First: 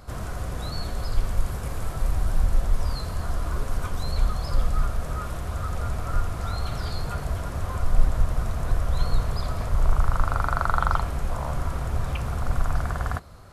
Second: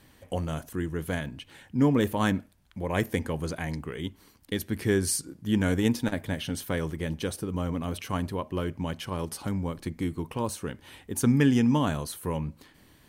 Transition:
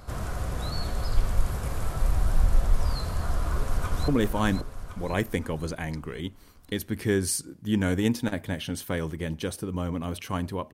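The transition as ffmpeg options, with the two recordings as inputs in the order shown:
ffmpeg -i cue0.wav -i cue1.wav -filter_complex "[0:a]apad=whole_dur=10.73,atrim=end=10.73,atrim=end=4.082[link_01];[1:a]atrim=start=1.878:end=8.53[link_02];[link_01][link_02]acrossfade=duration=0.004:curve1=hsin:curve2=hsin,asplit=2[link_03][link_04];[link_04]afade=type=in:start_time=3.38:duration=0.01,afade=type=out:start_time=4.08:duration=0.01,aecho=0:1:530|1060|1590|2120|2650|3180:0.530884|0.265442|0.132721|0.0663606|0.0331803|0.0165901[link_05];[link_03][link_05]amix=inputs=2:normalize=0" out.wav

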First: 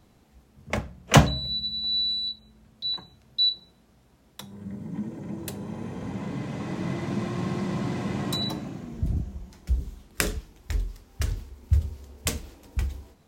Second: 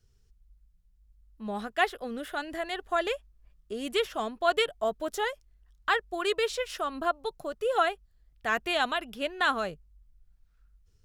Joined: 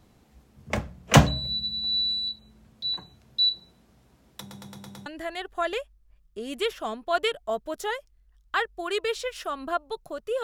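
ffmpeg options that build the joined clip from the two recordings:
ffmpeg -i cue0.wav -i cue1.wav -filter_complex "[0:a]apad=whole_dur=10.43,atrim=end=10.43,asplit=6[link_01][link_02][link_03][link_04][link_05][link_06];[link_01]atrim=end=4.512[link_07];[link_02]atrim=start=4.398:end=4.512[link_08];[link_03]atrim=start=4.398:end=4.512[link_09];[link_04]atrim=start=4.398:end=4.512[link_10];[link_05]atrim=start=4.398:end=4.512[link_11];[link_06]atrim=start=4.398:end=4.512[link_12];[1:a]atrim=start=2.398:end=7.77[link_13];[link_07][link_08]acrossfade=duration=0.004:curve1=hsin:curve2=hsin[link_14];[link_14][link_09]acrossfade=duration=0.004:curve1=hsin:curve2=hsin[link_15];[link_15][link_10]acrossfade=duration=0.004:curve1=hsin:curve2=hsin[link_16];[link_16][link_11]acrossfade=duration=0.004:curve1=hsin:curve2=hsin[link_17];[link_17][link_12]acrossfade=duration=0.004:curve1=hsin:curve2=hsin[link_18];[link_18][link_13]acrossfade=duration=0.004:curve1=hsin:curve2=hsin" out.wav

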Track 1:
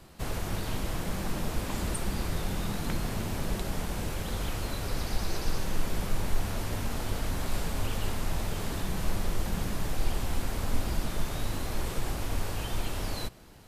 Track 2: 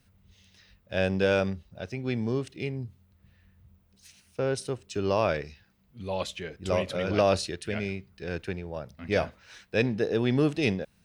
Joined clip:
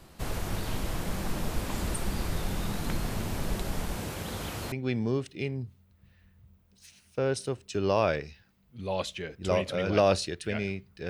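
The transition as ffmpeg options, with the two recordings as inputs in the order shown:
ffmpeg -i cue0.wav -i cue1.wav -filter_complex "[0:a]asettb=1/sr,asplit=3[link_01][link_02][link_03];[link_01]atrim=end=3.964[link_04];[link_02]atrim=start=3.96:end=4.72,asetpts=PTS-STARTPTS,afade=type=in:duration=0.004:curve=qsin,afade=type=out:start_time=0.756:duration=0.004:curve=qsin,highpass=83[link_05];[link_03]atrim=start=4.716[link_06];[link_04][link_05]acrossfade=duration=0.004:curve1=hsin:curve2=qsin[link_07];[link_07][link_06]acrossfade=duration=0.004:curve1=qsin:curve2=hsin,apad=whole_dur=11.09,atrim=end=11.09,atrim=end=4.722[link_08];[1:a]atrim=start=1.928:end=8.3[link_09];[link_08][link_09]acrossfade=duration=0.004:curve1=hsin:curve2=hsin" out.wav

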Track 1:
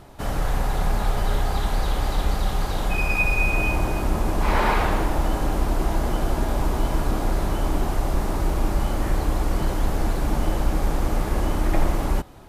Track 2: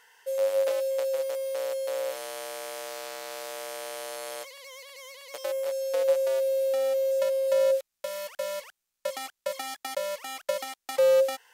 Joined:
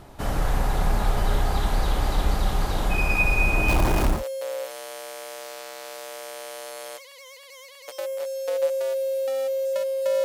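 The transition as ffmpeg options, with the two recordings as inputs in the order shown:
ffmpeg -i cue0.wav -i cue1.wav -filter_complex "[0:a]asettb=1/sr,asplit=3[link_01][link_02][link_03];[link_01]atrim=end=3.684[link_04];[link_02]atrim=start=3.68:end=4.24,asetpts=PTS-STARTPTS,afade=type=in:duration=0.004:curve=qsin,afade=type=out:start_time=0.556:duration=0.004:curve=qsin,aeval=exprs='val(0)+0.5*0.0668*sgn(val(0))':channel_layout=same[link_05];[link_03]atrim=start=4.236[link_06];[link_04][link_05]acrossfade=duration=0.004:curve1=hsin:curve2=qsin[link_07];[link_07][link_06]acrossfade=duration=0.004:curve1=qsin:curve2=hsin,apad=whole_dur=10.24,atrim=end=10.24,atrim=end=4.24,asetpts=PTS-STARTPTS[link_08];[1:a]atrim=start=1.54:end=7.7,asetpts=PTS-STARTPTS[link_09];[link_08][link_09]acrossfade=duration=0.16:curve1=tri:curve2=tri" out.wav

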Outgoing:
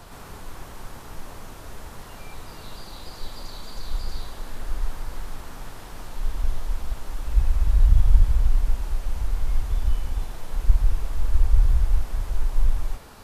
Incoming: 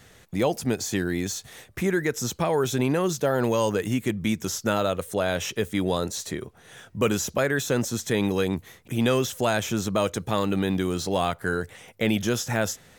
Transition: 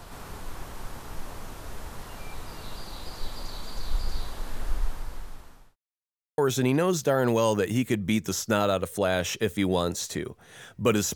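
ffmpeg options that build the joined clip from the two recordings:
ffmpeg -i cue0.wav -i cue1.wav -filter_complex "[0:a]apad=whole_dur=11.15,atrim=end=11.15,asplit=2[link_01][link_02];[link_01]atrim=end=5.76,asetpts=PTS-STARTPTS,afade=type=out:start_time=4.67:duration=1.09[link_03];[link_02]atrim=start=5.76:end=6.38,asetpts=PTS-STARTPTS,volume=0[link_04];[1:a]atrim=start=2.54:end=7.31,asetpts=PTS-STARTPTS,afade=type=in:duration=0.004:curve=hsin[link_05];[link_03][link_04][link_05]concat=n=3:v=0:a=1" out.wav

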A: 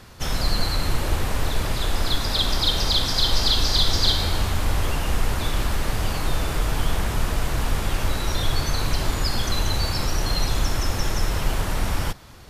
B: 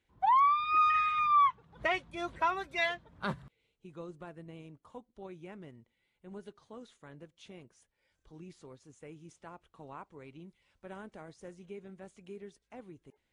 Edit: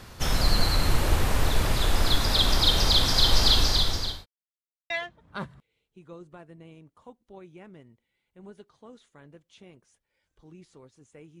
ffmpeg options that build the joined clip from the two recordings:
ffmpeg -i cue0.wav -i cue1.wav -filter_complex "[0:a]apad=whole_dur=11.4,atrim=end=11.4,asplit=2[link_01][link_02];[link_01]atrim=end=4.26,asetpts=PTS-STARTPTS,afade=type=out:start_time=3.54:duration=0.72[link_03];[link_02]atrim=start=4.26:end=4.9,asetpts=PTS-STARTPTS,volume=0[link_04];[1:a]atrim=start=2.78:end=9.28,asetpts=PTS-STARTPTS,afade=type=in:duration=0.004:curve=hsin[link_05];[link_03][link_04][link_05]concat=n=3:v=0:a=1" out.wav

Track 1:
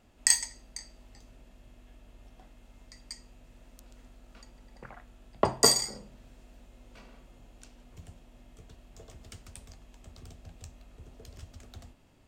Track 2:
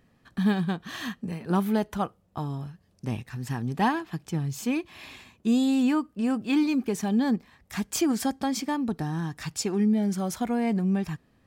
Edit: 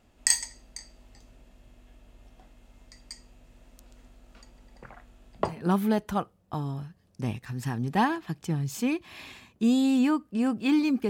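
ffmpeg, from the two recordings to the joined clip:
ffmpeg -i cue0.wav -i cue1.wav -filter_complex "[0:a]apad=whole_dur=11.09,atrim=end=11.09,atrim=end=5.62,asetpts=PTS-STARTPTS[link_01];[1:a]atrim=start=1.22:end=6.93,asetpts=PTS-STARTPTS[link_02];[link_01][link_02]acrossfade=duration=0.24:curve1=tri:curve2=tri" out.wav

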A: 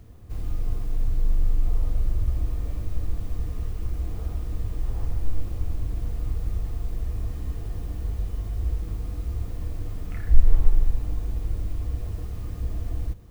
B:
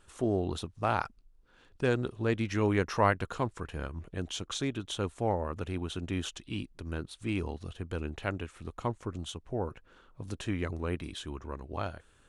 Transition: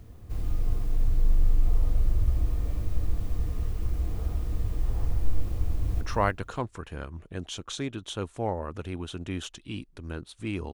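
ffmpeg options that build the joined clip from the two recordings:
ffmpeg -i cue0.wav -i cue1.wav -filter_complex "[0:a]apad=whole_dur=10.73,atrim=end=10.73,atrim=end=6.012[link_01];[1:a]atrim=start=2.828:end=7.55[link_02];[link_01][link_02]acrossfade=duration=0.004:curve1=hsin:curve2=hsin,asplit=2[link_03][link_04];[link_04]afade=type=in:start_time=5.53:duration=0.01,afade=type=out:start_time=6.01:duration=0.01,aecho=0:1:300|600|900:0.501187|0.0751781|0.0112767[link_05];[link_03][link_05]amix=inputs=2:normalize=0" out.wav

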